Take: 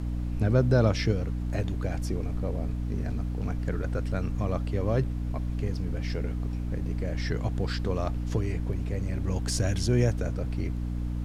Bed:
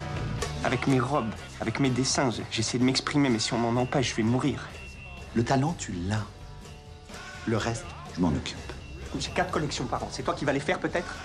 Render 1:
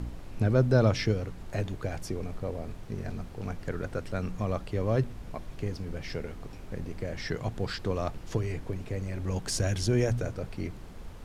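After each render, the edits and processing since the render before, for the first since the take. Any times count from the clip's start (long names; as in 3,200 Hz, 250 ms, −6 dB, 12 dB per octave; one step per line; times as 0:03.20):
hum removal 60 Hz, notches 5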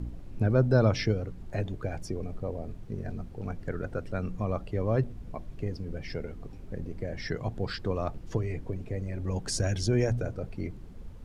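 broadband denoise 10 dB, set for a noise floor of −44 dBFS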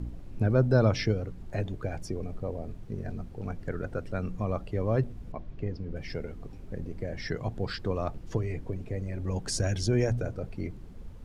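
0:05.32–0:05.96: high-frequency loss of the air 130 metres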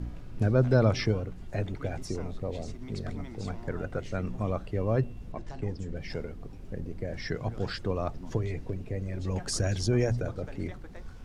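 mix in bed −21.5 dB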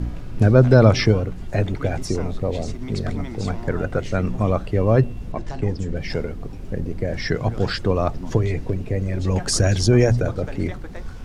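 level +10.5 dB
brickwall limiter −1 dBFS, peak gain reduction 1.5 dB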